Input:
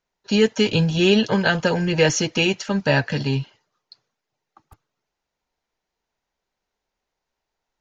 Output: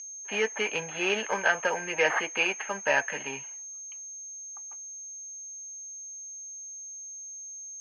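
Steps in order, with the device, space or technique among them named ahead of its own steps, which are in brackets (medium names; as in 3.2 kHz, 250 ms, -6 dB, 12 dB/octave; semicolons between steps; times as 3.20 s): toy sound module (decimation joined by straight lines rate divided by 6×; class-D stage that switches slowly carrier 6.4 kHz; cabinet simulation 790–4800 Hz, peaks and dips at 1.4 kHz -3 dB, 2.3 kHz +7 dB, 3.7 kHz -10 dB)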